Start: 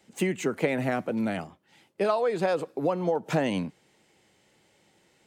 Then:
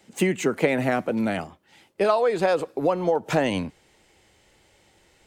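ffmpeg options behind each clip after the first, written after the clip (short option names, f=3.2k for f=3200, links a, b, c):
-af "asubboost=boost=10.5:cutoff=54,volume=5dB"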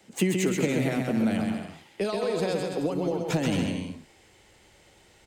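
-filter_complex "[0:a]acrossover=split=330|3000[a][b][c];[b]acompressor=threshold=-34dB:ratio=6[d];[a][d][c]amix=inputs=3:normalize=0,asplit=2[e][f];[f]aecho=0:1:130|221|284.7|329.3|360.5:0.631|0.398|0.251|0.158|0.1[g];[e][g]amix=inputs=2:normalize=0"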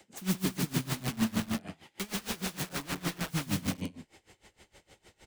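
-filter_complex "[0:a]acrossover=split=270[a][b];[b]aeval=exprs='(mod(37.6*val(0)+1,2)-1)/37.6':c=same[c];[a][c]amix=inputs=2:normalize=0,aeval=exprs='val(0)*pow(10,-23*(0.5-0.5*cos(2*PI*6.5*n/s))/20)':c=same,volume=3dB"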